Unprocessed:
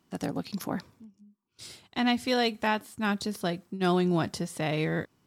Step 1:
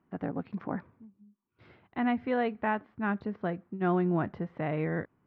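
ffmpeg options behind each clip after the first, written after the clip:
-af "lowpass=f=2k:w=0.5412,lowpass=f=2k:w=1.3066,volume=-2dB"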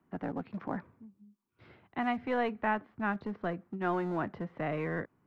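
-filter_complex "[0:a]acrossover=split=150|490|1500[a][b][c][d];[a]acompressor=threshold=-50dB:ratio=6[e];[b]asoftclip=type=hard:threshold=-35dB[f];[e][f][c][d]amix=inputs=4:normalize=0"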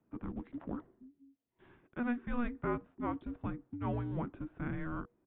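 -af "afreqshift=-480,aresample=8000,aresample=44100,volume=-4dB"

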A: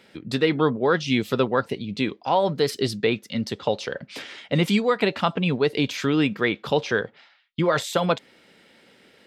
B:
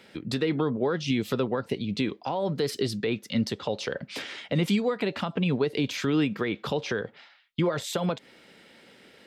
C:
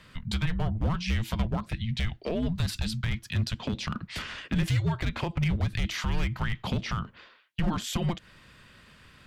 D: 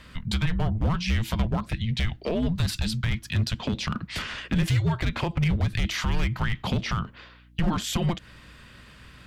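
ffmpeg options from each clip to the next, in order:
-filter_complex "[0:a]alimiter=limit=-15.5dB:level=0:latency=1:release=149,acrossover=split=480[a][b];[b]acompressor=threshold=-31dB:ratio=6[c];[a][c]amix=inputs=2:normalize=0,volume=1dB"
-af "asoftclip=type=hard:threshold=-21dB,afreqshift=-330"
-filter_complex "[0:a]aeval=exprs='val(0)+0.00141*(sin(2*PI*60*n/s)+sin(2*PI*2*60*n/s)/2+sin(2*PI*3*60*n/s)/3+sin(2*PI*4*60*n/s)/4+sin(2*PI*5*60*n/s)/5)':c=same,asplit=2[a][b];[b]asoftclip=type=tanh:threshold=-25dB,volume=-4dB[c];[a][c]amix=inputs=2:normalize=0"

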